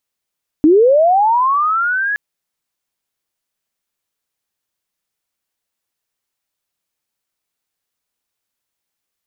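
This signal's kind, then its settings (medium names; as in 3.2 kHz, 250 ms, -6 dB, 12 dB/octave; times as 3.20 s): sweep linear 290 Hz -> 1.7 kHz -5.5 dBFS -> -15.5 dBFS 1.52 s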